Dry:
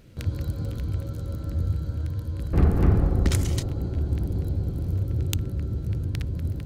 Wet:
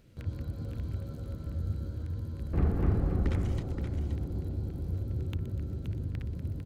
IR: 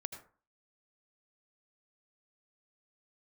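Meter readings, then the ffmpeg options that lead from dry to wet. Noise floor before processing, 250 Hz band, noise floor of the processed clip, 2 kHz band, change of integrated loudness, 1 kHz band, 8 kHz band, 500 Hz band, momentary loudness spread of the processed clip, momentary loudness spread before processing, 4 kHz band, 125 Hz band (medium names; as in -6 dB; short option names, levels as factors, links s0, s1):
-34 dBFS, -6.5 dB, -42 dBFS, -8.5 dB, -7.0 dB, -7.0 dB, under -20 dB, -6.5 dB, 9 LU, 9 LU, -14.5 dB, -7.5 dB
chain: -filter_complex "[0:a]asplit=2[s0][s1];[s1]asplit=3[s2][s3][s4];[s2]adelay=122,afreqshift=140,volume=0.126[s5];[s3]adelay=244,afreqshift=280,volume=0.0417[s6];[s4]adelay=366,afreqshift=420,volume=0.0136[s7];[s5][s6][s7]amix=inputs=3:normalize=0[s8];[s0][s8]amix=inputs=2:normalize=0,acrossover=split=2800[s9][s10];[s10]acompressor=threshold=0.00316:ratio=4:attack=1:release=60[s11];[s9][s11]amix=inputs=2:normalize=0,asplit=2[s12][s13];[s13]aecho=0:1:524:0.422[s14];[s12][s14]amix=inputs=2:normalize=0,volume=0.398"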